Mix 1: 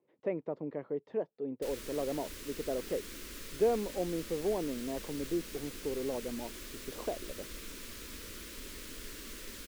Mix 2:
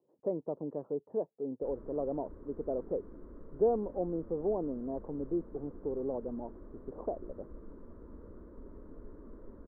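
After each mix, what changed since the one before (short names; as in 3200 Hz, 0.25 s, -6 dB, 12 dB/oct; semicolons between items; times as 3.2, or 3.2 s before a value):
speech: remove air absorption 210 m; master: add inverse Chebyshev low-pass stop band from 2500 Hz, stop band 50 dB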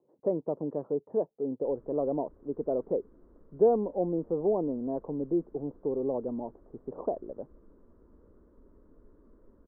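speech +5.0 dB; background -9.0 dB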